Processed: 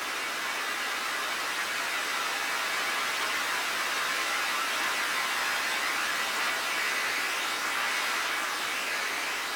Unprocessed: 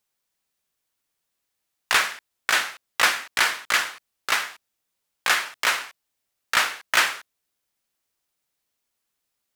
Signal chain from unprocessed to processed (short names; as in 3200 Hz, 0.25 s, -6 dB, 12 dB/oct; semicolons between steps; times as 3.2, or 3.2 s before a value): Paulstretch 26×, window 1.00 s, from 4.14; chorus voices 2, 0.31 Hz, delay 15 ms, depth 1.3 ms; band noise 240–1700 Hz -42 dBFS